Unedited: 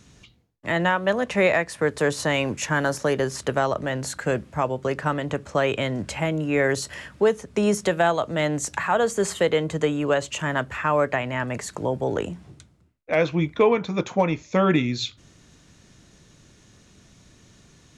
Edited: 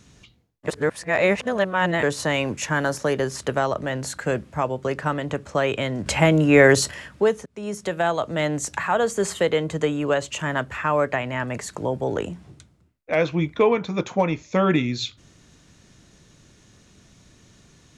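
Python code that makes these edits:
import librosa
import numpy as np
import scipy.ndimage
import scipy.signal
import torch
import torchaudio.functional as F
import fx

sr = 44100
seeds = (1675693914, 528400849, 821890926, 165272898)

y = fx.edit(x, sr, fx.reverse_span(start_s=0.68, length_s=1.35),
    fx.clip_gain(start_s=6.06, length_s=0.85, db=8.0),
    fx.fade_in_from(start_s=7.46, length_s=0.76, floor_db=-22.5), tone=tone)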